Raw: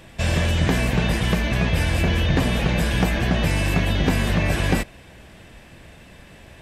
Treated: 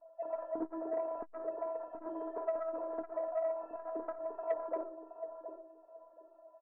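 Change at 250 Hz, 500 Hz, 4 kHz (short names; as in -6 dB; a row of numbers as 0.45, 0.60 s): -22.5 dB, -7.5 dB, under -40 dB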